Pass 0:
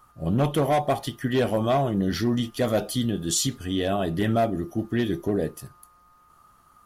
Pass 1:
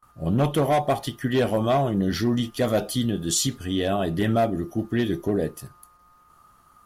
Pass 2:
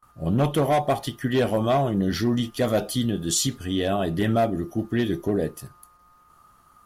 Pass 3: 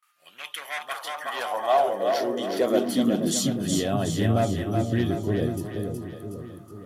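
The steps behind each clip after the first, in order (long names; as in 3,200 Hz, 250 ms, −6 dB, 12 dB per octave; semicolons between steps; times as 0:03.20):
noise gate with hold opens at −49 dBFS; level +1 dB
no processing that can be heard
echo with a time of its own for lows and highs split 500 Hz, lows 480 ms, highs 369 ms, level −5 dB; high-pass filter sweep 2,300 Hz → 95 Hz, 0:00.41–0:04.23; level −3.5 dB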